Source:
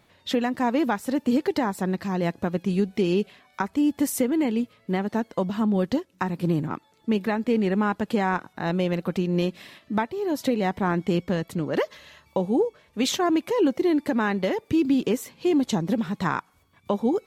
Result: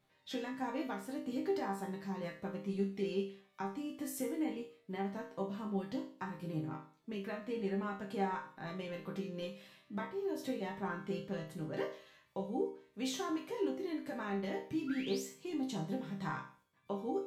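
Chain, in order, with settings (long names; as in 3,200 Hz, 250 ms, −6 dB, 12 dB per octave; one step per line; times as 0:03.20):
sound drawn into the spectrogram rise, 0:14.87–0:15.26, 1,300–8,300 Hz −34 dBFS
resonators tuned to a chord C3 minor, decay 0.44 s
level +2.5 dB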